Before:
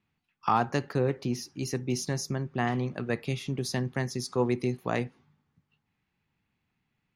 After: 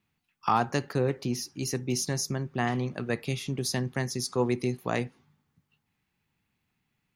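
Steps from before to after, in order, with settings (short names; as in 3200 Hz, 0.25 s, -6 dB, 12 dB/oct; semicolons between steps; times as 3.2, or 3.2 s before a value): high shelf 5400 Hz +8 dB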